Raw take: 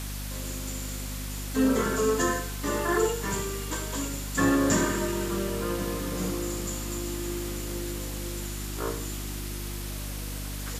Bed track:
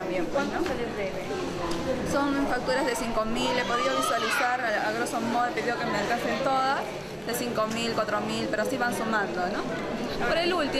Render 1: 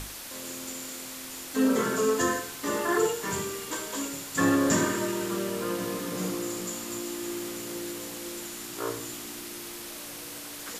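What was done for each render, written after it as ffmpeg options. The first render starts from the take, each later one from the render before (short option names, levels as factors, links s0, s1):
-af "bandreject=f=50:t=h:w=6,bandreject=f=100:t=h:w=6,bandreject=f=150:t=h:w=6,bandreject=f=200:t=h:w=6,bandreject=f=250:t=h:w=6,bandreject=f=300:t=h:w=6"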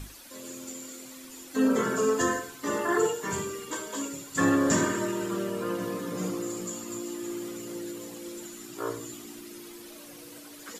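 -af "afftdn=nr=11:nf=-41"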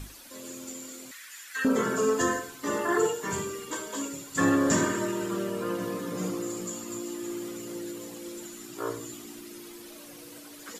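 -filter_complex "[0:a]asettb=1/sr,asplit=3[s0][s1][s2];[s0]atrim=end=1.114[s3];[s1]atrim=start=1.11:end=1.65,asetpts=PTS-STARTPTS,afade=t=in:d=0.004:c=qsin,afade=t=out:st=0.536:d=0.004:c=qsin,highpass=f=1700:t=q:w=3.9[s4];[s2]atrim=start=1.646[s5];[s3][s4]acrossfade=d=0.004:c1=hsin:c2=qsin[s6];[s6][s5]acrossfade=d=0.004:c1=qsin:c2=hsin"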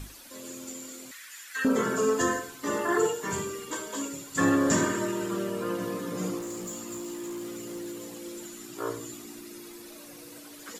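-filter_complex "[0:a]asettb=1/sr,asplit=3[s0][s1][s2];[s0]atrim=end=6.394[s3];[s1]atrim=start=6.39:end=8.53,asetpts=PTS-STARTPTS,afade=t=in:d=0.004:c=qsin,afade=t=out:st=2.136:d=0.004:c=qsin,volume=44.7,asoftclip=hard,volume=0.0224[s4];[s2]atrim=start=8.526[s5];[s3][s4]acrossfade=d=0.004:c1=hsin:c2=qsin[s6];[s6][s5]acrossfade=d=0.004:c1=qsin:c2=hsin,asettb=1/sr,asplit=3[s7][s8][s9];[s7]atrim=end=9.114[s10];[s8]atrim=start=9.11:end=10.39,asetpts=PTS-STARTPTS,afade=t=in:d=0.004:c=qsin,afade=t=out:st=1.276:d=0.004:c=qsin,bandreject=f=3100:w=12[s11];[s9]atrim=start=10.386[s12];[s10][s11]acrossfade=d=0.004:c1=hsin:c2=qsin[s13];[s13][s12]acrossfade=d=0.004:c1=qsin:c2=hsin"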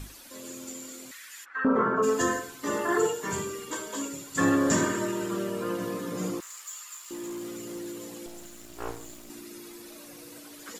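-filter_complex "[0:a]asplit=3[s0][s1][s2];[s0]afade=t=out:st=1.44:d=0.02[s3];[s1]lowpass=f=1200:t=q:w=2.5,afade=t=in:st=1.44:d=0.02,afade=t=out:st=2.02:d=0.02[s4];[s2]afade=t=in:st=2.02:d=0.02[s5];[s3][s4][s5]amix=inputs=3:normalize=0,asettb=1/sr,asplit=3[s6][s7][s8];[s6]atrim=end=6.404[s9];[s7]atrim=start=6.4:end=7.11,asetpts=PTS-STARTPTS,afade=t=in:d=0.004:c=qsin,afade=t=out:st=0.706:d=0.004:c=qsin,highpass=f=1200:w=0.5412,highpass=f=1200:w=1.3066[s10];[s8]atrim=start=7.106[s11];[s9][s10]acrossfade=d=0.004:c1=hsin:c2=qsin[s12];[s12][s11]acrossfade=d=0.004:c1=qsin:c2=hsin,asettb=1/sr,asplit=3[s13][s14][s15];[s13]atrim=end=8.264[s16];[s14]atrim=start=8.26:end=9.3,asetpts=PTS-STARTPTS,afade=t=in:d=0.004:c=qsin,afade=t=out:st=1.036:d=0.004:c=qsin,aeval=exprs='max(val(0),0)':c=same[s17];[s15]atrim=start=9.296[s18];[s16][s17]acrossfade=d=0.004:c1=hsin:c2=qsin[s19];[s19][s18]acrossfade=d=0.004:c1=qsin:c2=hsin"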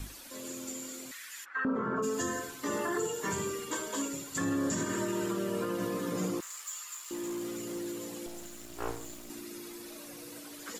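-filter_complex "[0:a]acrossover=split=290|3000[s0][s1][s2];[s1]acompressor=threshold=0.0316:ratio=6[s3];[s0][s3][s2]amix=inputs=3:normalize=0,alimiter=limit=0.0708:level=0:latency=1:release=128"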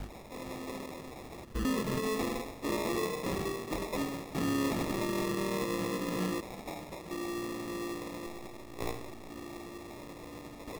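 -af "acrusher=samples=29:mix=1:aa=0.000001"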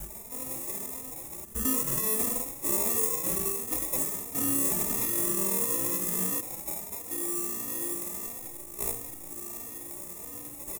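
-filter_complex "[0:a]aexciter=amount=8.4:drive=8.4:freq=6600,asplit=2[s0][s1];[s1]adelay=3.1,afreqshift=1.5[s2];[s0][s2]amix=inputs=2:normalize=1"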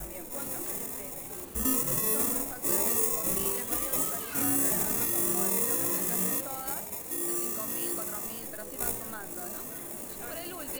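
-filter_complex "[1:a]volume=0.15[s0];[0:a][s0]amix=inputs=2:normalize=0"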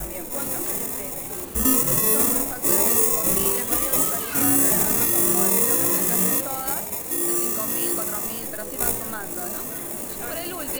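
-af "volume=2.66,alimiter=limit=0.794:level=0:latency=1"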